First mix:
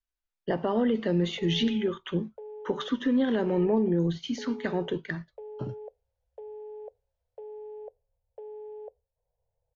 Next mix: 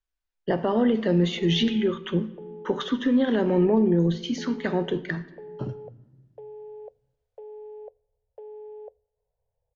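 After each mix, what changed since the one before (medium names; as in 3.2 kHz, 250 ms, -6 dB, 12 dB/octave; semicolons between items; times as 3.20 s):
reverb: on, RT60 1.3 s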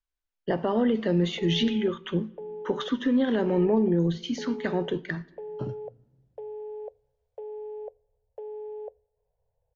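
speech: send -8.5 dB; background +3.5 dB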